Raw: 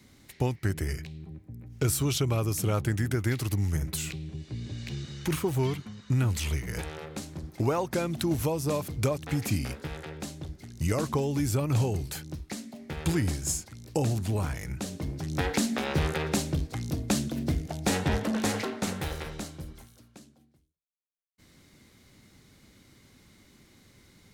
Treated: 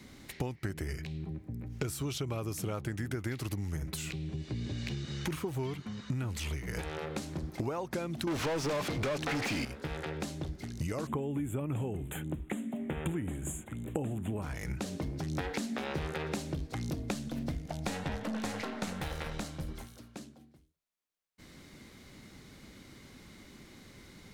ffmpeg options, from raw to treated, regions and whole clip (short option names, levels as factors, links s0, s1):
-filter_complex "[0:a]asettb=1/sr,asplit=3[s0][s1][s2];[s0]atrim=end=8.274[s3];[s1]atrim=start=8.27:end=9.65,asetpts=PTS-STARTPTS,afade=t=in:d=0.004:c=qsin,afade=t=out:st=1.376:d=0.004:c=qsin,acrossover=split=6900[s4][s5];[s5]acompressor=threshold=0.00224:ratio=4:attack=1:release=60[s6];[s4][s6]amix=inputs=2:normalize=0,asplit=2[s7][s8];[s8]highpass=f=720:p=1,volume=44.7,asoftclip=type=tanh:threshold=0.178[s9];[s7][s9]amix=inputs=2:normalize=0,lowpass=f=4700:p=1,volume=0.501[s10];[s2]atrim=start=9.646[s11];[s3][s10]acrossfade=d=0.004:c1=hsin:c2=qsin[s12];[s12][s11]acrossfade=d=0.004:c1=qsin:c2=hsin,asettb=1/sr,asplit=3[s13][s14][s15];[s13]atrim=end=11.074[s16];[s14]atrim=start=11.07:end=14.42,asetpts=PTS-STARTPTS,afade=t=in:d=0.004:c=qsin,afade=t=out:st=3.346:d=0.004:c=qsin,asuperstop=centerf=5000:order=8:qfactor=1.4,equalizer=f=240:t=o:w=1.8:g=5.5[s17];[s15]atrim=start=14.416[s18];[s16][s17]acrossfade=d=0.004:c1=hsin:c2=qsin[s19];[s19][s18]acrossfade=d=0.004:c1=qsin:c2=hsin,asettb=1/sr,asplit=3[s20][s21][s22];[s20]atrim=end=17.144[s23];[s21]atrim=start=17.14:end=19.69,asetpts=PTS-STARTPTS,afade=t=in:d=0.004:c=qsin,afade=t=out:st=2.546:d=0.004:c=qsin,aeval=exprs='if(lt(val(0),0),0.708*val(0),val(0))':c=same,equalizer=f=370:t=o:w=0.34:g=-8.5[s24];[s22]atrim=start=19.686[s25];[s23][s24]acrossfade=d=0.004:c1=hsin:c2=qsin[s26];[s26][s25]acrossfade=d=0.004:c1=qsin:c2=hsin,equalizer=f=99:w=1.5:g=-4.5,acompressor=threshold=0.0112:ratio=6,highshelf=f=5200:g=-6,volume=2"